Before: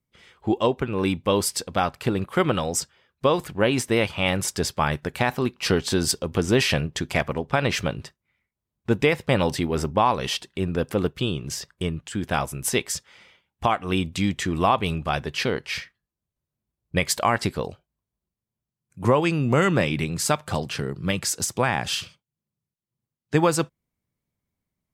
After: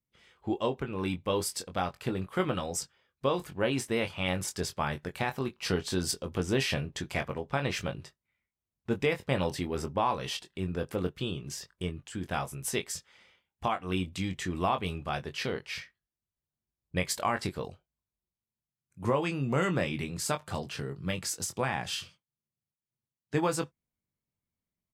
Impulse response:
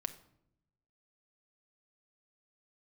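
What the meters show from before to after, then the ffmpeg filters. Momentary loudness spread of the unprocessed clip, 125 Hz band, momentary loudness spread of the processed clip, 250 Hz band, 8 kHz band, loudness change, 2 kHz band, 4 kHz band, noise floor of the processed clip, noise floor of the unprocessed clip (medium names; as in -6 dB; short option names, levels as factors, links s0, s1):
8 LU, -8.0 dB, 8 LU, -8.5 dB, -8.5 dB, -8.5 dB, -8.5 dB, -8.0 dB, under -85 dBFS, under -85 dBFS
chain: -filter_complex "[0:a]asplit=2[s0][s1];[s1]adelay=22,volume=0.422[s2];[s0][s2]amix=inputs=2:normalize=0,volume=0.355"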